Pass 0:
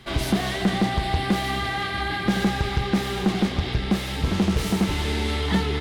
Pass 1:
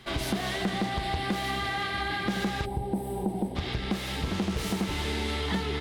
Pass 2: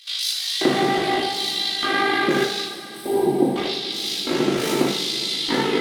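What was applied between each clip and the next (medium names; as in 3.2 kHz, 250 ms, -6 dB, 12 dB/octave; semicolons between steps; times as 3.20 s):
time-frequency box 2.65–3.56 s, 1–7.7 kHz -21 dB; bass shelf 200 Hz -4 dB; compression 2.5:1, threshold -25 dBFS, peak gain reduction 5 dB; trim -2 dB
LFO high-pass square 0.82 Hz 320–4200 Hz; AM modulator 52 Hz, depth 75%; two-slope reverb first 0.6 s, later 4.9 s, from -18 dB, DRR -3.5 dB; trim +8 dB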